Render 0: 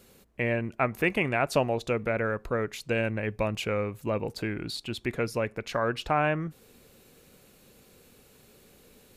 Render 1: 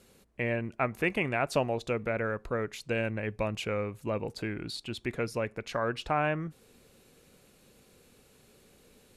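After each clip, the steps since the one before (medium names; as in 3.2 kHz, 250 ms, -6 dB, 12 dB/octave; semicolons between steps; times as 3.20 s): low-pass 12 kHz 24 dB/octave; trim -3 dB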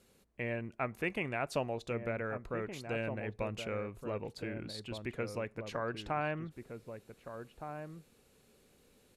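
echo from a far wall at 260 m, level -7 dB; trim -6.5 dB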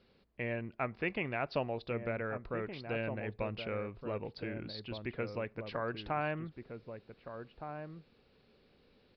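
resampled via 11.025 kHz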